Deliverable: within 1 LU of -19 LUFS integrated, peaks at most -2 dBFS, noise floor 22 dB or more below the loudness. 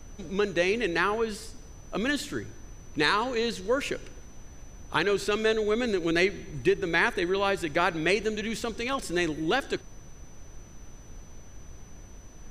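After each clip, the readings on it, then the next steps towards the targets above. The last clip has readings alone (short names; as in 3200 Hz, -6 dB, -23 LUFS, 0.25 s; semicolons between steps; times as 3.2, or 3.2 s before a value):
steady tone 6000 Hz; tone level -56 dBFS; noise floor -47 dBFS; noise floor target -50 dBFS; loudness -27.5 LUFS; peak -8.5 dBFS; loudness target -19.0 LUFS
-> notch 6000 Hz, Q 30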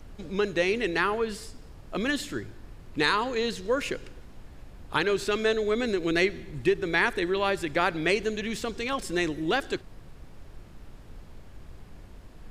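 steady tone none; noise floor -48 dBFS; noise floor target -50 dBFS
-> noise print and reduce 6 dB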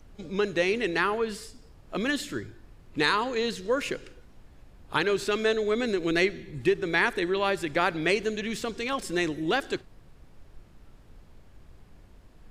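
noise floor -54 dBFS; loudness -27.5 LUFS; peak -8.5 dBFS; loudness target -19.0 LUFS
-> gain +8.5 dB; limiter -2 dBFS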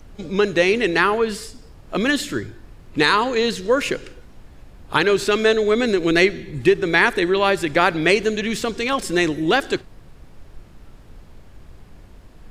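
loudness -19.0 LUFS; peak -2.0 dBFS; noise floor -45 dBFS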